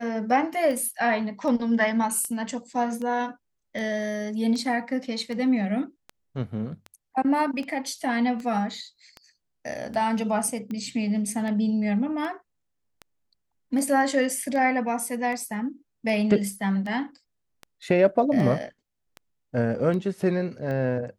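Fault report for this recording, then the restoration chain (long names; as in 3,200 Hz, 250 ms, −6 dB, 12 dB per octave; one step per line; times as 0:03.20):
scratch tick 78 rpm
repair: click removal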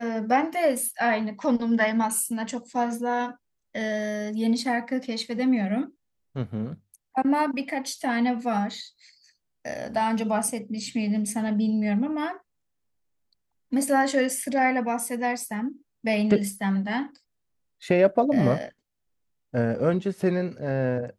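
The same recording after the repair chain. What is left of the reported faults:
none of them is left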